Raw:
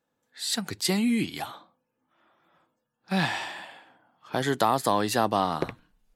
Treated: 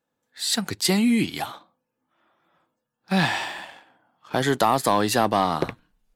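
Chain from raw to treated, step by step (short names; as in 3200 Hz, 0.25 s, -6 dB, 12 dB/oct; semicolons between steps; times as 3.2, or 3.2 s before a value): sample leveller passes 1; gain +1 dB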